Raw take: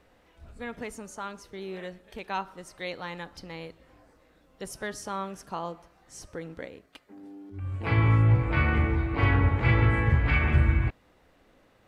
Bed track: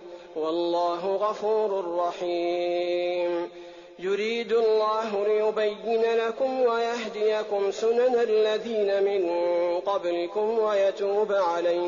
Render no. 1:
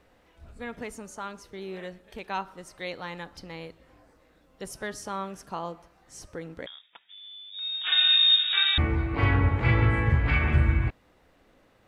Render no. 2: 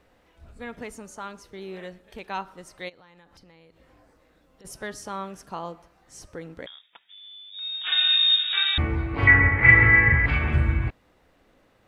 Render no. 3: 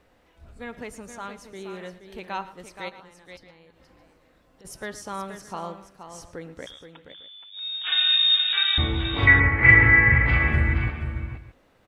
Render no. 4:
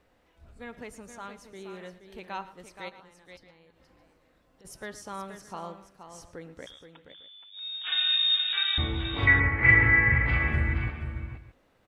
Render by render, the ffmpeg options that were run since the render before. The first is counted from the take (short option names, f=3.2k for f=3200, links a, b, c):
-filter_complex "[0:a]asettb=1/sr,asplit=3[a][b][c];[a]atrim=end=6.664[d];[b]atrim=start=6.66:end=8.78,asetpts=PTS-STARTPTS,afade=t=in:d=0.004:c=qsin,afade=t=out:st=2.116:d=0.004:c=qsin,lowpass=f=3.2k:t=q:w=0.5098,lowpass=f=3.2k:t=q:w=0.6013,lowpass=f=3.2k:t=q:w=0.9,lowpass=f=3.2k:t=q:w=2.563,afreqshift=-3800[e];[c]atrim=start=8.776[f];[d][e]acrossfade=d=0.004:c1=hsin:c2=qsin[g];[g][f]acrossfade=d=0.004:c1=qsin:c2=hsin"
-filter_complex "[0:a]asplit=3[a][b][c];[a]afade=t=out:st=2.88:d=0.02[d];[b]acompressor=threshold=-50dB:ratio=8:attack=3.2:release=140:knee=1:detection=peak,afade=t=in:st=2.88:d=0.02,afade=t=out:st=4.64:d=0.02[e];[c]afade=t=in:st=4.64:d=0.02[f];[d][e][f]amix=inputs=3:normalize=0,asettb=1/sr,asplit=3[g][h][i];[g]atrim=end=9.274[j];[h]atrim=start=9.27:end=10.26,asetpts=PTS-STARTPTS,afade=t=in:d=0.004:c=qsin,afade=t=out:st=0.986:d=0.004:c=qsin,lowpass=f=2k:t=q:w=9.9[k];[i]atrim=start=10.256[l];[j][k]acrossfade=d=0.004:c1=hsin:c2=qsin[m];[m][l]acrossfade=d=0.004:c1=qsin:c2=hsin"
-af "aecho=1:1:112|474|617:0.141|0.355|0.106"
-af "volume=-5dB"